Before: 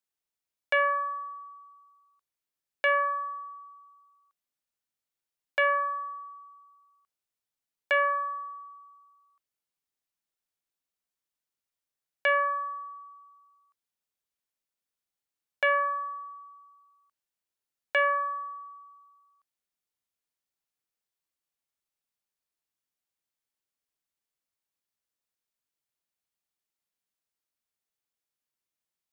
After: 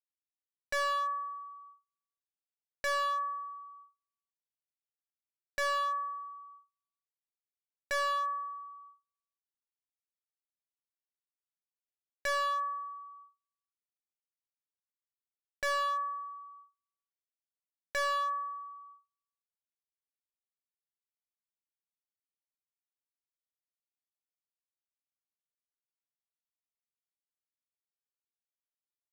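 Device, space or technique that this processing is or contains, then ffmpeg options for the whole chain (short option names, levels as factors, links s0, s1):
walkie-talkie: -af "highpass=600,lowpass=2600,asoftclip=type=hard:threshold=0.0335,agate=range=0.02:threshold=0.00178:ratio=16:detection=peak"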